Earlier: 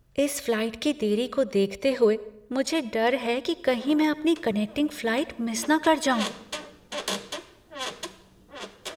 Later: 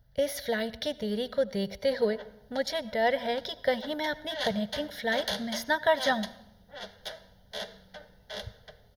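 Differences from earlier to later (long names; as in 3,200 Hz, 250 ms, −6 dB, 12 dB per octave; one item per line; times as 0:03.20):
background: entry −1.80 s
master: add phaser with its sweep stopped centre 1,700 Hz, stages 8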